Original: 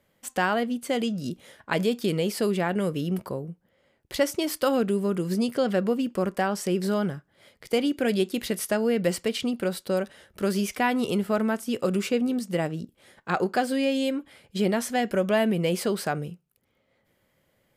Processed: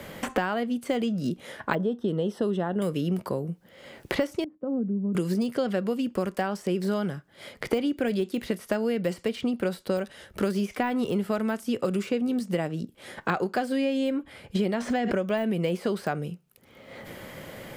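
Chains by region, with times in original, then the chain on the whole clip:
0:01.75–0:02.82: moving average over 19 samples + one half of a high-frequency compander decoder only
0:04.44–0:05.15: four-pole ladder band-pass 210 Hz, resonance 40% + high-frequency loss of the air 190 metres + comb filter 3.9 ms, depth 36%
0:14.74–0:15.28: parametric band 12,000 Hz −14.5 dB 0.48 octaves + background raised ahead of every attack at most 24 dB per second
whole clip: de-essing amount 80%; high-shelf EQ 5,400 Hz −4 dB; multiband upward and downward compressor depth 100%; level −2 dB

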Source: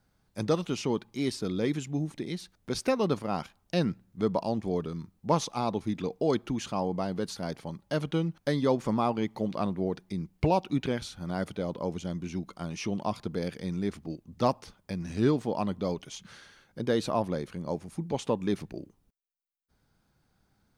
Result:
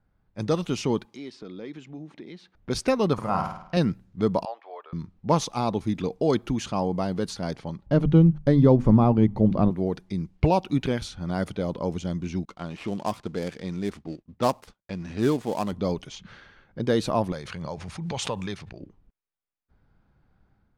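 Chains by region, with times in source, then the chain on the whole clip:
0:01.05–0:02.55: high-pass filter 230 Hz + downward compressor 2 to 1, threshold −48 dBFS
0:03.13–0:03.77: drawn EQ curve 170 Hz 0 dB, 270 Hz −8 dB, 430 Hz −4 dB, 1,100 Hz +6 dB, 3,500 Hz −8 dB, 8,800 Hz −4 dB + flutter between parallel walls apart 8.9 metres, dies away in 0.65 s
0:04.45–0:04.93: inverse Chebyshev high-pass filter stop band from 200 Hz, stop band 60 dB + high-frequency loss of the air 380 metres
0:07.86–0:09.71: spectral tilt −4 dB per octave + mains-hum notches 50/100/150/200/250 Hz
0:12.45–0:15.73: gap after every zero crossing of 0.097 ms + low-shelf EQ 170 Hz −9.5 dB + downward expander −52 dBFS
0:17.32–0:18.81: high-pass filter 87 Hz + parametric band 280 Hz −14 dB 1.9 octaves + background raised ahead of every attack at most 30 dB per second
whole clip: low-pass that shuts in the quiet parts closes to 2,200 Hz, open at −27.5 dBFS; low-shelf EQ 78 Hz +9.5 dB; automatic gain control gain up to 6 dB; level −2.5 dB

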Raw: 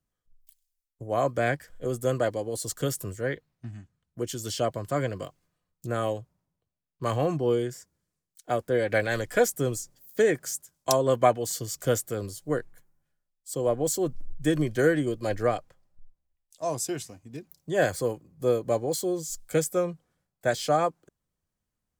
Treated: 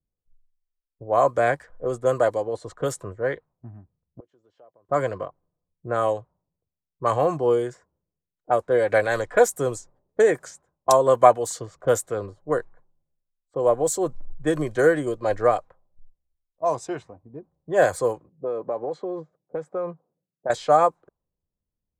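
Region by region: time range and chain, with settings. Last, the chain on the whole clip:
0:04.20–0:04.89: downward compressor 4 to 1, threshold −32 dBFS + resonant band-pass 7,100 Hz, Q 0.57 + high-frequency loss of the air 74 metres
0:18.29–0:20.50: high-pass filter 140 Hz 24 dB per octave + low-pass that shuts in the quiet parts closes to 350 Hz, open at −21.5 dBFS + downward compressor 8 to 1, threshold −28 dBFS
whole clip: parametric band 3,900 Hz +11.5 dB 0.26 octaves; low-pass that shuts in the quiet parts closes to 310 Hz, open at −22.5 dBFS; graphic EQ with 10 bands 125 Hz −3 dB, 250 Hz −4 dB, 500 Hz +4 dB, 1,000 Hz +9 dB, 4,000 Hz −10 dB, 8,000 Hz +6 dB, 16,000 Hz −6 dB; level +1 dB

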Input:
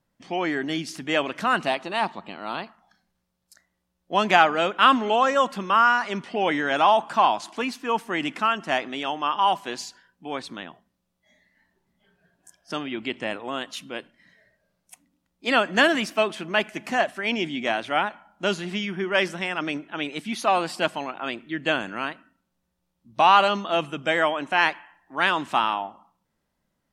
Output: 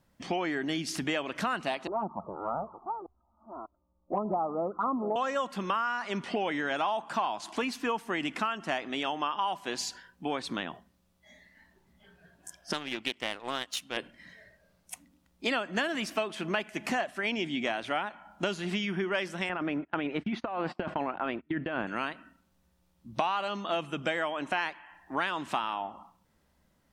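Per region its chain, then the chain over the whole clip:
0:01.87–0:05.16: delay that plays each chunk backwards 596 ms, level −12.5 dB + Butterworth low-pass 1,300 Hz 96 dB per octave + flanger swept by the level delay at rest 3.5 ms, full sweep at −18.5 dBFS
0:12.73–0:13.97: spectral tilt +2 dB per octave + power curve on the samples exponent 1.4 + highs frequency-modulated by the lows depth 0.15 ms
0:19.49–0:21.87: low-pass filter 1,800 Hz + noise gate −42 dBFS, range −28 dB + compressor whose output falls as the input rises −31 dBFS
whole clip: parametric band 69 Hz +10 dB 0.31 octaves; downward compressor 6 to 1, threshold −34 dBFS; level +5.5 dB

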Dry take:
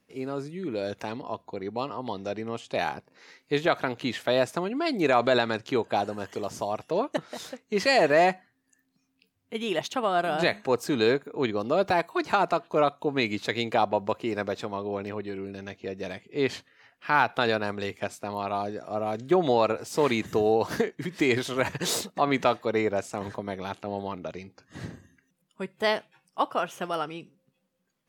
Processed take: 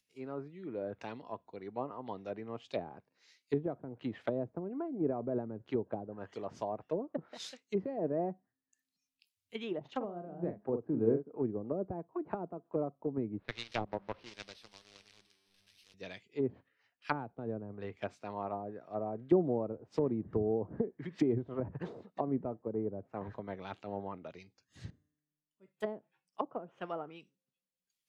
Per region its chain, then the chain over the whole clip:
0:09.80–0:11.28: high-pass filter 63 Hz + double-tracking delay 45 ms −7 dB
0:13.39–0:15.94: linear delta modulator 32 kbit/s, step −25.5 dBFS + power curve on the samples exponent 2
0:24.90–0:25.68: parametric band 280 Hz +13 dB 2.1 octaves + tuned comb filter 150 Hz, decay 1.5 s, mix 90%
whole clip: treble cut that deepens with the level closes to 360 Hz, closed at −23 dBFS; upward compression, threshold −47 dBFS; multiband upward and downward expander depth 100%; level −6.5 dB

